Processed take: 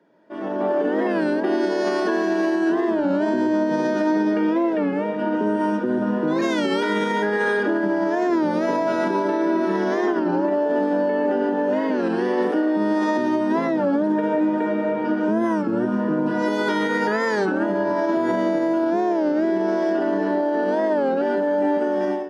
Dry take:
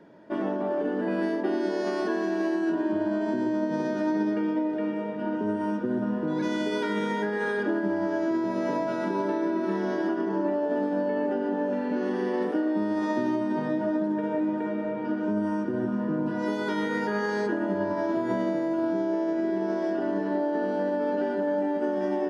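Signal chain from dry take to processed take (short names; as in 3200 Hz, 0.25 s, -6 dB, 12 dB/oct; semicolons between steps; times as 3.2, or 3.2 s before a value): HPF 110 Hz 24 dB/oct; low shelf 150 Hz -11.5 dB; limiter -22 dBFS, peak gain reduction 4.5 dB; AGC gain up to 16.5 dB; record warp 33 1/3 rpm, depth 160 cents; gain -7 dB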